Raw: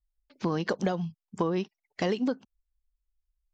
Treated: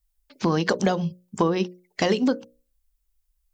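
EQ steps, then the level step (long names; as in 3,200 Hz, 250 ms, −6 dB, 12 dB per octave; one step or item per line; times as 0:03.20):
high-shelf EQ 6,600 Hz +10.5 dB
mains-hum notches 60/120/180/240/300/360/420/480/540/600 Hz
+7.0 dB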